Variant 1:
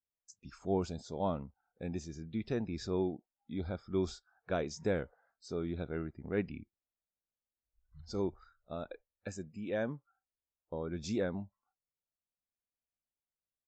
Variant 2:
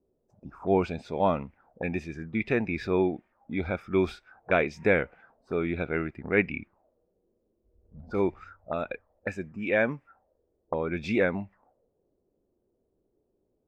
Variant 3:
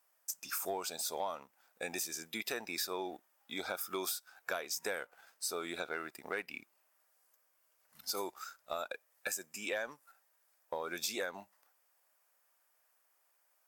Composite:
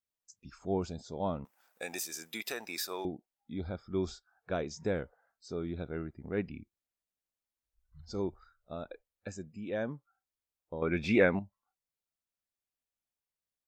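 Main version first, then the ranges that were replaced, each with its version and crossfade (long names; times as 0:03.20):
1
0:01.45–0:03.05: punch in from 3
0:10.82–0:11.39: punch in from 2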